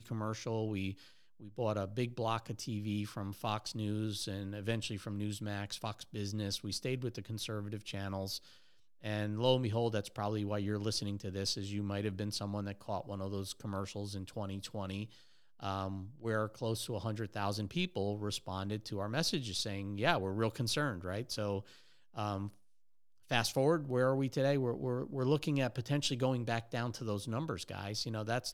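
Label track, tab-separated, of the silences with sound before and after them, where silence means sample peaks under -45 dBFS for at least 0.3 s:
0.930000	1.420000	silence
8.380000	9.040000	silence
15.060000	15.600000	silence
21.610000	22.170000	silence
22.490000	23.310000	silence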